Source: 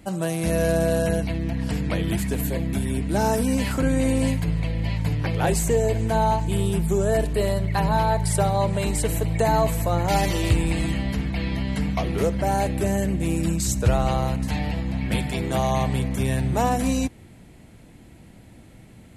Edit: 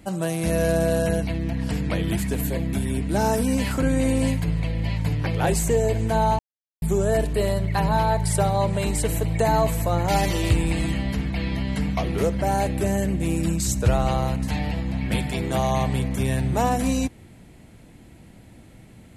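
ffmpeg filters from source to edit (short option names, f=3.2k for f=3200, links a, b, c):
-filter_complex "[0:a]asplit=3[a][b][c];[a]atrim=end=6.39,asetpts=PTS-STARTPTS,afade=t=out:st=6.386:d=0.004:c=hsin[d];[b]atrim=start=6.39:end=6.82,asetpts=PTS-STARTPTS,volume=0[e];[c]atrim=start=6.82,asetpts=PTS-STARTPTS,afade=t=in:d=0.004:c=hsin[f];[d][e][f]concat=n=3:v=0:a=1"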